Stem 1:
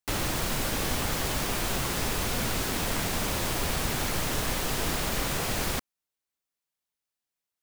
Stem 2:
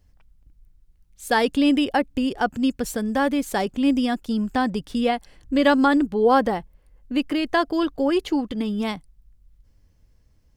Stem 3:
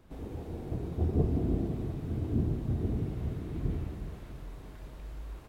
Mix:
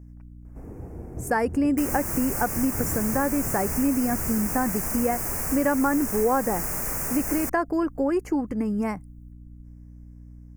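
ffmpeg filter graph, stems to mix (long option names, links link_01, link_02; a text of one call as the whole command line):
ffmpeg -i stem1.wav -i stem2.wav -i stem3.wav -filter_complex "[0:a]crystalizer=i=1.5:c=0,adelay=1700,volume=-3.5dB[link_01];[1:a]aeval=exprs='val(0)+0.00708*(sin(2*PI*60*n/s)+sin(2*PI*2*60*n/s)/2+sin(2*PI*3*60*n/s)/3+sin(2*PI*4*60*n/s)/4+sin(2*PI*5*60*n/s)/5)':channel_layout=same,volume=0dB,asplit=2[link_02][link_03];[2:a]adelay=450,volume=0dB[link_04];[link_03]apad=whole_len=261669[link_05];[link_04][link_05]sidechaincompress=threshold=-23dB:ratio=8:attack=16:release=242[link_06];[link_01][link_02][link_06]amix=inputs=3:normalize=0,asuperstop=centerf=3600:order=4:qfactor=0.91,acompressor=threshold=-21dB:ratio=2.5" out.wav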